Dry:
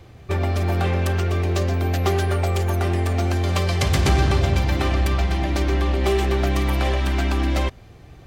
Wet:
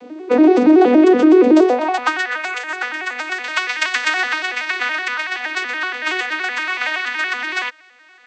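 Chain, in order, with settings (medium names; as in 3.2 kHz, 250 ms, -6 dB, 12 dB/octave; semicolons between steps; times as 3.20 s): vocoder on a broken chord major triad, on B3, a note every 94 ms; high-pass sweep 310 Hz -> 1.7 kHz, 1.47–2.18 s; loudness maximiser +16 dB; trim -2 dB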